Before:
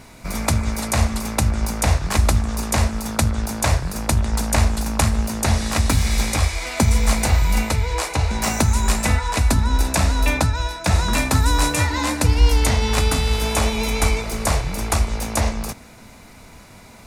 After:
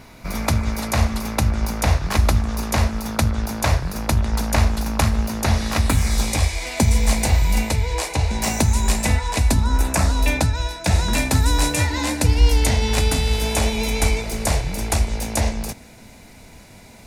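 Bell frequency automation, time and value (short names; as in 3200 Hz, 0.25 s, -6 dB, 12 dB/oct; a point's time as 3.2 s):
bell -8.5 dB 0.49 oct
5.79 s 8200 Hz
6.36 s 1300 Hz
9.56 s 1300 Hz
9.86 s 5700 Hz
10.27 s 1200 Hz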